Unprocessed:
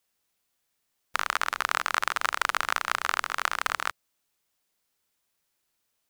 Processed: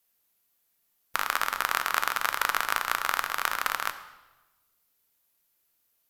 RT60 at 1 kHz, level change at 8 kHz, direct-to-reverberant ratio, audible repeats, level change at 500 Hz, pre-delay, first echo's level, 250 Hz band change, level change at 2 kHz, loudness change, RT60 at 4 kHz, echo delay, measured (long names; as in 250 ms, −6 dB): 1.1 s, +1.5 dB, 8.5 dB, no echo audible, −0.5 dB, 4 ms, no echo audible, −0.5 dB, −0.5 dB, 0.0 dB, 0.95 s, no echo audible